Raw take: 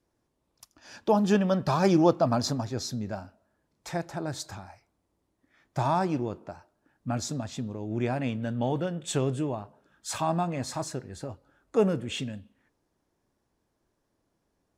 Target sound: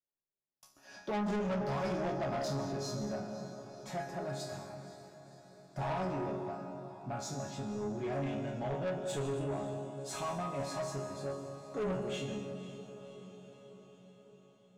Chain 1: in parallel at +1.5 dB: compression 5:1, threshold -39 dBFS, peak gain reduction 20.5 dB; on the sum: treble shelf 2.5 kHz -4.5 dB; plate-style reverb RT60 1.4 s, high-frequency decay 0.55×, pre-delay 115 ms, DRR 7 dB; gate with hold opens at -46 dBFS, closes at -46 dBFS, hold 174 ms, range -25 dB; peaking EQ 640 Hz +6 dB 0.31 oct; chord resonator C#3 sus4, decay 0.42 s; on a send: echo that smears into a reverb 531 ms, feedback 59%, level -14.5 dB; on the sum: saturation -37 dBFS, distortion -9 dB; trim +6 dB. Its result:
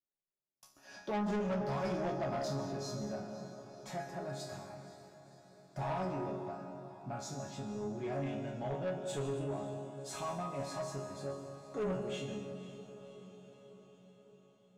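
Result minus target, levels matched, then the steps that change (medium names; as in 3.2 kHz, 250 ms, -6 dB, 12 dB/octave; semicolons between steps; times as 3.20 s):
compression: peak gain reduction +9.5 dB
change: compression 5:1, threshold -27 dBFS, peak gain reduction 11 dB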